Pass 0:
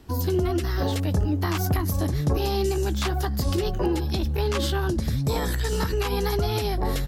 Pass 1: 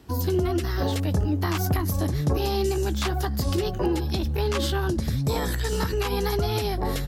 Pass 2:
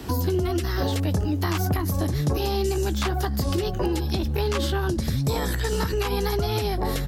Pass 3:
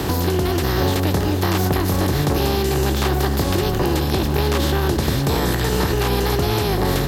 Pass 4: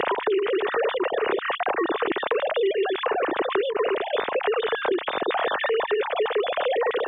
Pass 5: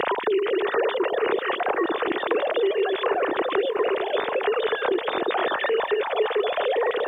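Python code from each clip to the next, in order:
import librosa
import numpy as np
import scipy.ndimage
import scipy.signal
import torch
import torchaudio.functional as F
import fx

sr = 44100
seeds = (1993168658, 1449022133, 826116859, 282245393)

y1 = scipy.signal.sosfilt(scipy.signal.butter(2, 49.0, 'highpass', fs=sr, output='sos'), x)
y2 = fx.band_squash(y1, sr, depth_pct=70)
y3 = fx.bin_compress(y2, sr, power=0.4)
y3 = y3 + 10.0 ** (-11.5 / 20.0) * np.pad(y3, (int(488 * sr / 1000.0), 0))[:len(y3)]
y4 = fx.sine_speech(y3, sr)
y4 = fx.band_squash(y4, sr, depth_pct=100)
y4 = y4 * librosa.db_to_amplitude(-6.5)
y5 = fx.quant_dither(y4, sr, seeds[0], bits=12, dither='triangular')
y5 = fx.echo_stepped(y5, sr, ms=234, hz=270.0, octaves=0.7, feedback_pct=70, wet_db=-6.0)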